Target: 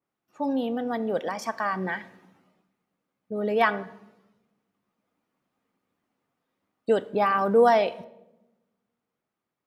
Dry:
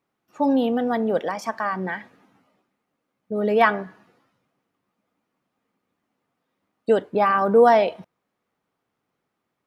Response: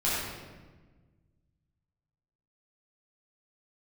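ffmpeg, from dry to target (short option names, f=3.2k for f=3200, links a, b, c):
-filter_complex "[0:a]dynaudnorm=f=210:g=13:m=7.5dB,asplit=2[a][b];[1:a]atrim=start_sample=2205,asetrate=70560,aresample=44100,adelay=25[c];[b][c]afir=irnorm=-1:irlink=0,volume=-26dB[d];[a][d]amix=inputs=2:normalize=0,adynamicequalizer=threshold=0.0398:dfrequency=2500:dqfactor=0.7:tfrequency=2500:tqfactor=0.7:attack=5:release=100:ratio=0.375:range=2:mode=boostabove:tftype=highshelf,volume=-7.5dB"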